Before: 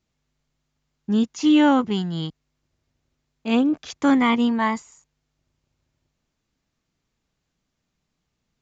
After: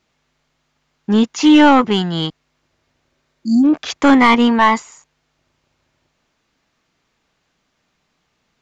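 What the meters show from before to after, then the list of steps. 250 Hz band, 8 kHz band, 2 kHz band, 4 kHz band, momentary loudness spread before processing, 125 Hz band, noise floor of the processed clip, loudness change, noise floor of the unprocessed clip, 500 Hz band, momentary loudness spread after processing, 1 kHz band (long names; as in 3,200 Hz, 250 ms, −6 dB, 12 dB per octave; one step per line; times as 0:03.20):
+6.5 dB, can't be measured, +10.0 dB, +9.5 dB, 15 LU, +5.5 dB, −69 dBFS, +7.0 dB, −78 dBFS, +8.0 dB, 13 LU, +10.5 dB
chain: healed spectral selection 0:03.14–0:03.62, 360–4,300 Hz before
mid-hump overdrive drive 14 dB, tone 2,800 Hz, clips at −8 dBFS
level +7 dB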